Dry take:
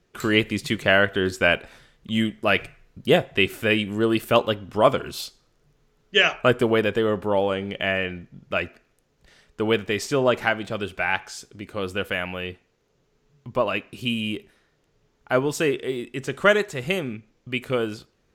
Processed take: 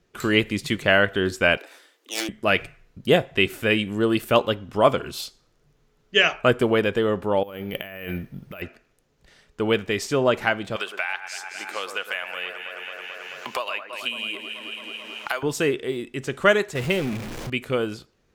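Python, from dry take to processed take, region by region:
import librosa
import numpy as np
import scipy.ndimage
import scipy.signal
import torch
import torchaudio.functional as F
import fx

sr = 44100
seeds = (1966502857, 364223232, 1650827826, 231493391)

y = fx.chain(x, sr, fx.self_delay(depth_ms=0.3),
    fx.steep_highpass(hz=270.0, slope=96),
    fx.high_shelf(hz=8300.0, db=11.0), at=(1.57, 2.29))
y = fx.chain(y, sr, fx.over_compress(threshold_db=-34.0, ratio=-1.0),
    fx.resample_bad(factor=3, down='filtered', up='hold'), at=(7.43, 8.62))
y = fx.chain(y, sr, fx.highpass(hz=810.0, slope=12),
    fx.echo_alternate(ms=109, hz=1700.0, feedback_pct=69, wet_db=-8),
    fx.band_squash(depth_pct=100), at=(10.76, 15.43))
y = fx.chain(y, sr, fx.zero_step(step_db=-27.5),
    fx.high_shelf(hz=4800.0, db=-4.5), at=(16.75, 17.5))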